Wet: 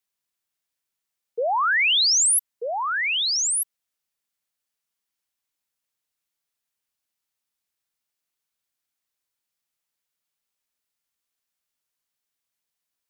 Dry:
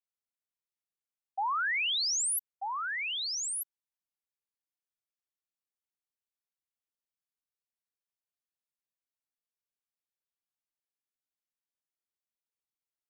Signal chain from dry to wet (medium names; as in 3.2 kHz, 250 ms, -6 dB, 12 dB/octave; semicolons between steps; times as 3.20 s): tilt shelf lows -4 dB; frequency shift -310 Hz; trim +7.5 dB